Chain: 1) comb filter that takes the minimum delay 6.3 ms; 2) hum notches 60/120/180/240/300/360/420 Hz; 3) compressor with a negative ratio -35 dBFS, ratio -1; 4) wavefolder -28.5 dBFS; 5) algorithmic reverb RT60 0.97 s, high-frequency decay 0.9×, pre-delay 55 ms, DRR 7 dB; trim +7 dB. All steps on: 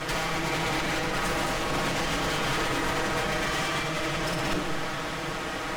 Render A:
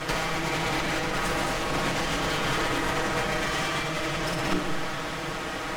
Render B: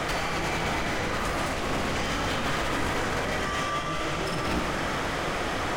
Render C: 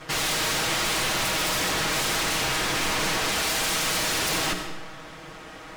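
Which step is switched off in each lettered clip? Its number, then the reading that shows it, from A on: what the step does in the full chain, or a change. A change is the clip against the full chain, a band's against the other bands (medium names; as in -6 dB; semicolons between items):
4, distortion -13 dB; 1, 8 kHz band -2.5 dB; 3, momentary loudness spread change +13 LU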